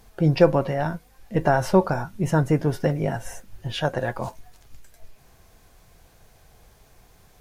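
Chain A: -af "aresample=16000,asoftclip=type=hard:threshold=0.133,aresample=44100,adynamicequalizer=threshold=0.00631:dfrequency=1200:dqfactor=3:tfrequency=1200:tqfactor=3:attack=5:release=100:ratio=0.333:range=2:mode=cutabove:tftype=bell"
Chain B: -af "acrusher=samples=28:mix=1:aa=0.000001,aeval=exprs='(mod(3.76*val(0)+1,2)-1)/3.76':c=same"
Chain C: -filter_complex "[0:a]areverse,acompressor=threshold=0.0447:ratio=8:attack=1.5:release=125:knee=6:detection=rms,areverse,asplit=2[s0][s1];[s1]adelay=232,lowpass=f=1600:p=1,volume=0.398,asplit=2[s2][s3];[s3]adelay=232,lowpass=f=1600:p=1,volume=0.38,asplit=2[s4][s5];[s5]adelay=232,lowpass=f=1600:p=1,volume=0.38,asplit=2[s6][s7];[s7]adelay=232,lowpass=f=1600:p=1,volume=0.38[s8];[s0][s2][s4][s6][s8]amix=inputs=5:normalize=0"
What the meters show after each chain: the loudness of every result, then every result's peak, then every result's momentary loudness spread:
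-26.0 LUFS, -24.5 LUFS, -34.5 LUFS; -16.5 dBFS, -11.5 dBFS, -20.0 dBFS; 11 LU, 14 LU, 9 LU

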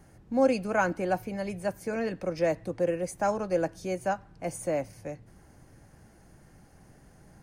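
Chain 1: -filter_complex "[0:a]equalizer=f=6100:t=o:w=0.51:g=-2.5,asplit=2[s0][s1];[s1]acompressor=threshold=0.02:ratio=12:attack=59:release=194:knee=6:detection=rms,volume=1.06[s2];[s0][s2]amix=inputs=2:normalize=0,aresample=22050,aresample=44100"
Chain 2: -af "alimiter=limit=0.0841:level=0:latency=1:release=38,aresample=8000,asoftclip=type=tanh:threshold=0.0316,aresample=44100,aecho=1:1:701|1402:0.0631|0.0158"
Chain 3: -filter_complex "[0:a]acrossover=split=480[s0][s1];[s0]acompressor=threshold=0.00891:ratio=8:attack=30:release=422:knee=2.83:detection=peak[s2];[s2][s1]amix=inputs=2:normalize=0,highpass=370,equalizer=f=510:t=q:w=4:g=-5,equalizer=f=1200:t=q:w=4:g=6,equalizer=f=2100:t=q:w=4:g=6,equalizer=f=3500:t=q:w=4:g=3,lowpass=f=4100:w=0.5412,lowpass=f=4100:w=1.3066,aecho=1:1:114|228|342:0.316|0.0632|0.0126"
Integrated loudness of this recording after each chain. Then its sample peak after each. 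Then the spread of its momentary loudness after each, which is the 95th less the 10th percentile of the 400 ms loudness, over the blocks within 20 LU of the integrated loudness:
-27.0 LUFS, -37.0 LUFS, -33.5 LUFS; -11.0 dBFS, -29.0 dBFS, -12.5 dBFS; 7 LU, 22 LU, 11 LU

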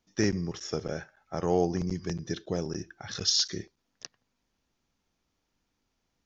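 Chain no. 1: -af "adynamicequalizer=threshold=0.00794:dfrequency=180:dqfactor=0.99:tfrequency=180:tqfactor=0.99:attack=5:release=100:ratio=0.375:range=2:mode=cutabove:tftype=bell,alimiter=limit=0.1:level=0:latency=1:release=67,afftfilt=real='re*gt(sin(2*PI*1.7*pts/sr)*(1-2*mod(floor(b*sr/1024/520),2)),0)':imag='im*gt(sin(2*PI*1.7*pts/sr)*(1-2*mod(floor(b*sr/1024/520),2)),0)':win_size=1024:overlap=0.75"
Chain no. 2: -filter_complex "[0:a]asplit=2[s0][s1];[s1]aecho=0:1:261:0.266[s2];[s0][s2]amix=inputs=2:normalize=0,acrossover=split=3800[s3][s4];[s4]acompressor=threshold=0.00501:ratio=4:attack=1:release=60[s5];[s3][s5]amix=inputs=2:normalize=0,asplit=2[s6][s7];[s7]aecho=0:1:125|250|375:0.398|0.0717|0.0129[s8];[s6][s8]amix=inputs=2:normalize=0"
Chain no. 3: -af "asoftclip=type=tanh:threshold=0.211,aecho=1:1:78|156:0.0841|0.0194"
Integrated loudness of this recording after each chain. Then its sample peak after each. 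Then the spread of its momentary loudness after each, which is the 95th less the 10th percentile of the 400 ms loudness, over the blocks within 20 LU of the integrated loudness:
-37.5 LUFS, -31.5 LUFS, -31.0 LUFS; -20.0 dBFS, -11.5 dBFS, -15.0 dBFS; 17 LU, 12 LU, 21 LU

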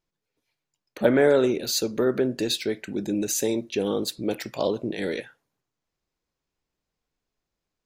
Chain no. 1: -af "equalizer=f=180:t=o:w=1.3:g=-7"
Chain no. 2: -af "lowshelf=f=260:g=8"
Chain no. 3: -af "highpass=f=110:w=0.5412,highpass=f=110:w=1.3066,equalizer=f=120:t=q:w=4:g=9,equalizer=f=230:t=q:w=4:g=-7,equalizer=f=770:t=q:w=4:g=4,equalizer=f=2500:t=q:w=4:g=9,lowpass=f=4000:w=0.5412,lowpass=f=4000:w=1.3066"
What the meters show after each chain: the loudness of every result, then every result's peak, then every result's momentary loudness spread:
-26.5 LUFS, -22.5 LUFS, -25.5 LUFS; -7.5 dBFS, -4.5 dBFS, -4.5 dBFS; 11 LU, 10 LU, 11 LU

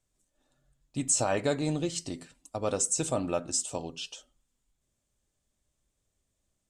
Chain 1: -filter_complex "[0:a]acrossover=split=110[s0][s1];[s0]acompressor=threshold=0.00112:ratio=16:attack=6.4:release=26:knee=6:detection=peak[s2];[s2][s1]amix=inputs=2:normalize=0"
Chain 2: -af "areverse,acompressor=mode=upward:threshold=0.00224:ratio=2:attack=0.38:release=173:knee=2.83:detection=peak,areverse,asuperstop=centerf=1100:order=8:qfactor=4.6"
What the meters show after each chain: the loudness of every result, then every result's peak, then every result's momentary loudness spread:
-30.0 LUFS, -30.0 LUFS; -13.0 dBFS, -13.0 dBFS; 15 LU, 15 LU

